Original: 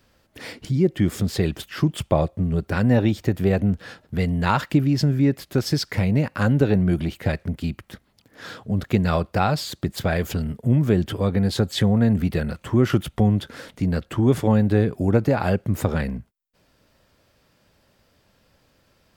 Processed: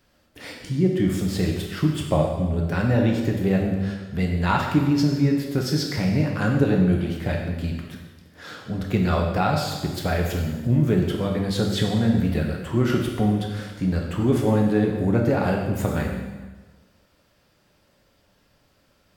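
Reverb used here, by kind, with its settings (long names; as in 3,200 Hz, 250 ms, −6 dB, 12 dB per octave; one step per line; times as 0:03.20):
dense smooth reverb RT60 1.3 s, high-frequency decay 0.95×, DRR 0 dB
level −3.5 dB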